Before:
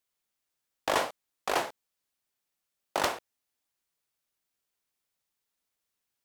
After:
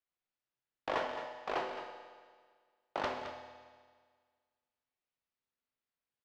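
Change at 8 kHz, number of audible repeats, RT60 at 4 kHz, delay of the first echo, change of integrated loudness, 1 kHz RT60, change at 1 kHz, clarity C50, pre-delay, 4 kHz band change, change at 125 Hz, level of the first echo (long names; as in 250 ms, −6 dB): −21.5 dB, 1, 1.7 s, 216 ms, −7.5 dB, 1.7 s, −6.0 dB, 4.5 dB, 8 ms, −10.5 dB, −5.5 dB, −10.0 dB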